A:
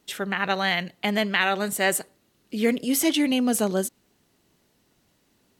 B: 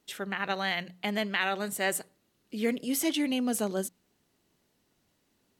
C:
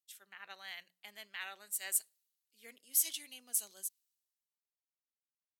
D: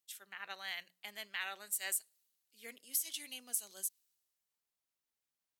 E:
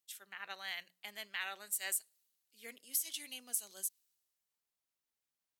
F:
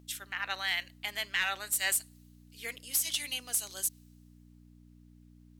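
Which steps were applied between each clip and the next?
hum notches 60/120/180 Hz; trim -6.5 dB
differentiator; three bands expanded up and down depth 70%; trim -5 dB
compression 8:1, threshold -37 dBFS, peak gain reduction 13 dB; trim +4.5 dB
no audible change
hum 60 Hz, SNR 11 dB; overdrive pedal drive 16 dB, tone 7.6 kHz, clips at -16 dBFS; trim +1.5 dB

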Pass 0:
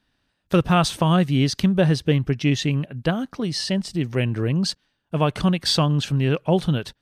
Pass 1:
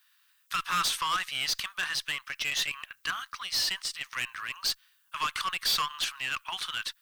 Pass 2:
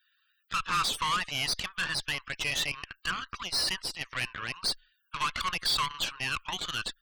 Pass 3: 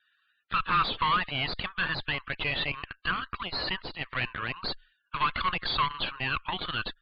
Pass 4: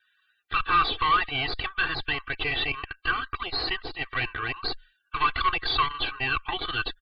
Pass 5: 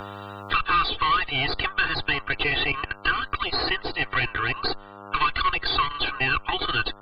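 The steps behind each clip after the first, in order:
elliptic high-pass 1.1 kHz, stop band 60 dB; valve stage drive 29 dB, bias 0.2; added noise violet -74 dBFS; trim +5 dB
frequency shift -23 Hz; loudest bins only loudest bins 64; Chebyshev shaper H 6 -15 dB, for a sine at -19 dBFS
steep low-pass 4.5 kHz 96 dB/octave; treble shelf 2.9 kHz -10.5 dB; trim +5.5 dB
comb 2.6 ms, depth 96%
mains buzz 100 Hz, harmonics 14, -55 dBFS 0 dB/octave; three bands compressed up and down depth 70%; trim +2.5 dB

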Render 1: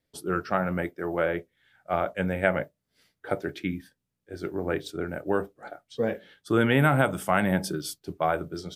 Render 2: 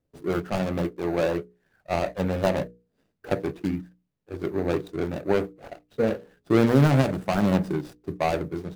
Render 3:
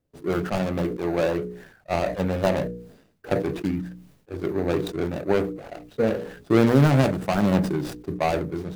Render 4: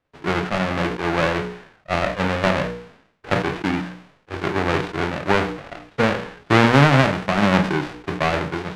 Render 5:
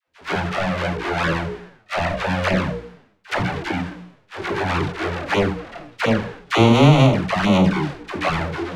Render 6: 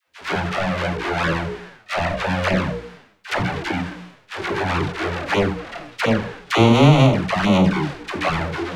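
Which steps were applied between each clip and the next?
median filter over 41 samples; hum notches 60/120/180/240/300/360/420/480 Hz; trim +5.5 dB
decay stretcher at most 81 dB/s; trim +1 dB
formants flattened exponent 0.3; low-pass 2.1 kHz 12 dB/octave; trim +5.5 dB
touch-sensitive flanger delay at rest 11.8 ms, full sweep at -13 dBFS; phase dispersion lows, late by 78 ms, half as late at 620 Hz; trim +3 dB
tape noise reduction on one side only encoder only

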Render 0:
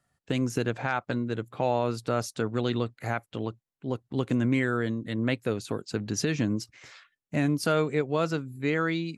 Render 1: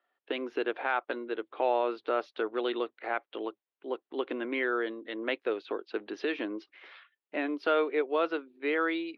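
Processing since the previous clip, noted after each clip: elliptic band-pass 340–3400 Hz, stop band 40 dB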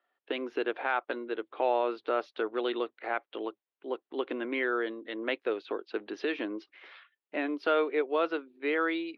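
no audible change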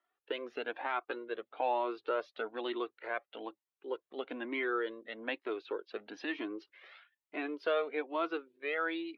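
Shepard-style flanger rising 1.1 Hz

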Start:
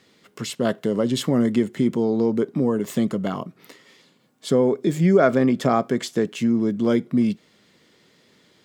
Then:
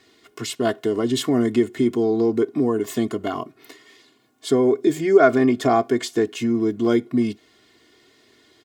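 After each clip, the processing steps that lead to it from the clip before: comb 2.8 ms, depth 95%; trim -1 dB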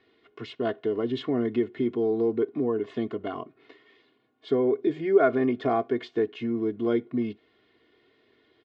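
low-pass 3.5 kHz 24 dB/octave; peaking EQ 470 Hz +5 dB 0.48 oct; trim -8 dB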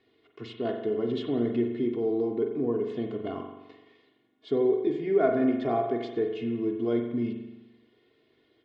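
peaking EQ 1.4 kHz -5.5 dB 1.3 oct; spring tank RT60 1 s, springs 42 ms, chirp 60 ms, DRR 3.5 dB; trim -2.5 dB

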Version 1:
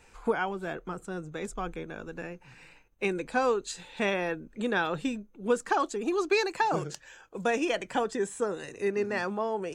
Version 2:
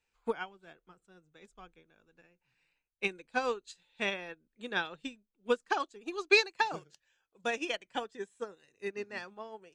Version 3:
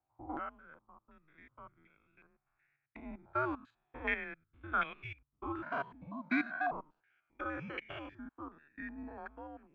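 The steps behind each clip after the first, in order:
peaking EQ 3.5 kHz +9 dB 1.8 oct; upward expansion 2.5:1, over -37 dBFS
spectrogram pixelated in time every 100 ms; frequency shift -150 Hz; step-sequenced low-pass 2.7 Hz 860–2300 Hz; trim -3.5 dB

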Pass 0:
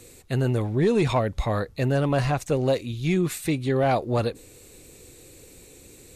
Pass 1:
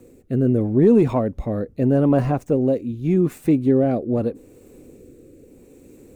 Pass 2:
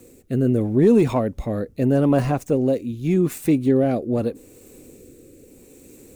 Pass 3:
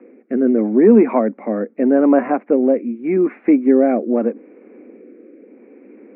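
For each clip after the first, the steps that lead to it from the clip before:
median filter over 3 samples; ten-band graphic EQ 250 Hz +11 dB, 500 Hz +4 dB, 2 kHz -4 dB, 4 kHz -12 dB, 8 kHz -6 dB; rotary cabinet horn 0.8 Hz
treble shelf 2.4 kHz +11 dB; trim -1 dB
Chebyshev band-pass 210–2300 Hz, order 5; trim +6 dB

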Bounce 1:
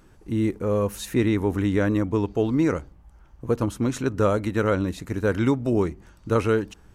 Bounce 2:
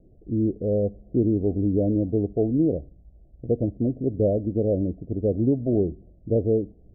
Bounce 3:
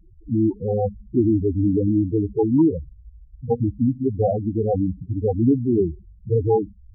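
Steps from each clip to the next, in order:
steep low-pass 710 Hz 96 dB/octave
sample-and-hold 35×; loudest bins only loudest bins 4; trim +6.5 dB

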